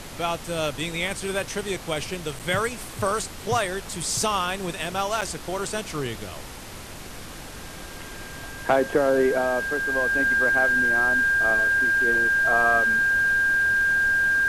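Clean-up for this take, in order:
notch filter 1,600 Hz, Q 30
repair the gap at 0:02.39/0:05.21, 7 ms
noise reduction from a noise print 30 dB

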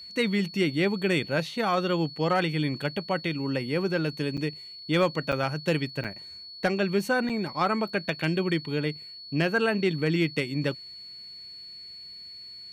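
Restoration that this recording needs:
clipped peaks rebuilt −15 dBFS
notch filter 4,400 Hz, Q 30
repair the gap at 0:04.37/0:05.32/0:06.04/0:07.29, 6.8 ms

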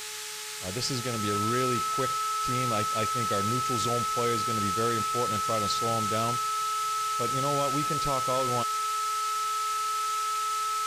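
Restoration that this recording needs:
hum removal 426.4 Hz, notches 35
notch filter 1,300 Hz, Q 30
noise reduction from a noise print 30 dB

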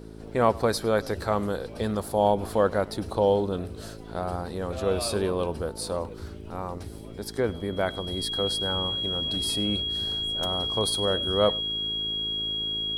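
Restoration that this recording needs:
hum removal 54.2 Hz, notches 8
notch filter 3,300 Hz, Q 30
echo removal 102 ms −22.5 dB

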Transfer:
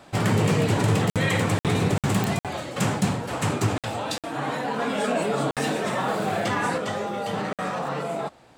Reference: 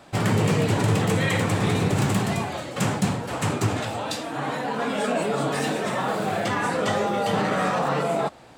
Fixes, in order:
click removal
repair the gap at 0:01.10/0:01.59/0:01.98/0:02.39/0:03.78/0:04.18/0:05.51/0:07.53, 57 ms
level correction +5 dB, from 0:06.78

